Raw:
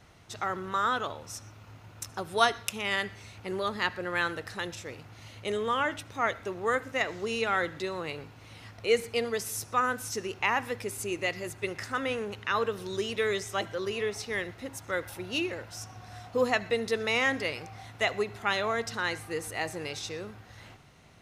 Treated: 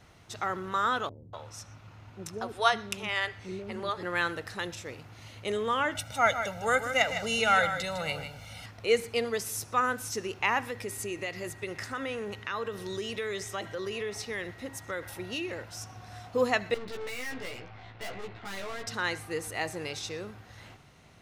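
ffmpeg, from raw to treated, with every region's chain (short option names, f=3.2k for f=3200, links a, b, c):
-filter_complex "[0:a]asettb=1/sr,asplit=3[a][b][c];[a]atrim=end=1.094[d];[b]atrim=start=1.09:end=4.03,asetpts=PTS-STARTPTS,afade=t=in:d=0.004:c=qsin,afade=t=out:st=2.936:d=0.004:c=qsin,highshelf=f=8.6k:g=-11,acrossover=split=400[e][f];[f]adelay=240[g];[e][g]amix=inputs=2:normalize=0,atrim=end_sample=129654[h];[c]atrim=start=4.026[i];[d][h]acrossfade=d=0.004:c1=hsin:c2=qsin[j];[j][i]acrossfade=d=0.004:c1=qsin:c2=hsin,asettb=1/sr,asplit=3[k][l][m];[k]atrim=end=5.954[n];[l]atrim=start=5.95:end=8.66,asetpts=PTS-STARTPTS,afade=t=in:d=0.004:c=qsin,afade=t=out:st=2.706:d=0.004:c=qsin,highshelf=f=4.4k:g=6.5,aecho=1:1:1.4:0.95,atrim=end_sample=119511,aecho=1:1:155:0.355,atrim=end_sample=119511[o];[m]atrim=start=8.656[p];[n][o]acrossfade=d=0.004:c1=hsin:c2=qsin[q];[q][p]acrossfade=d=0.004:c1=qsin:c2=hsin,asettb=1/sr,asplit=3[r][s][t];[r]atrim=end=10.634[u];[s]atrim=start=10.63:end=15.64,asetpts=PTS-STARTPTS,afade=t=in:d=0.004:c=qsin,afade=t=out:st=5.006:d=0.004:c=qsin,acompressor=threshold=-31dB:ratio=3:attack=3.2:release=140:knee=1:detection=peak,aeval=exprs='val(0)+0.00224*sin(2*PI*1900*n/s)':c=same[v];[t]atrim=start=15.636[w];[u][v]acrossfade=d=0.004:c1=hsin:c2=qsin[x];[x][w]acrossfade=d=0.004:c1=qsin:c2=hsin,asettb=1/sr,asplit=3[y][z][aa];[y]atrim=end=16.744[ab];[z]atrim=start=16.74:end=18.87,asetpts=PTS-STARTPTS,afade=t=in:d=0.004:c=qsin,afade=t=out:st=2.126:d=0.004:c=qsin,lowpass=f=3.9k:w=0.5412,lowpass=f=3.9k:w=1.3066,aeval=exprs='(tanh(89.1*val(0)+0.7)-tanh(0.7))/89.1':c=same,asplit=2[ac][ad];[ad]adelay=16,volume=-2dB[ae];[ac][ae]amix=inputs=2:normalize=0,atrim=end_sample=93933[af];[aa]atrim=start=18.866[ag];[ab][af]acrossfade=d=0.004:c1=hsin:c2=qsin[ah];[ah][ag]acrossfade=d=0.004:c1=qsin:c2=hsin"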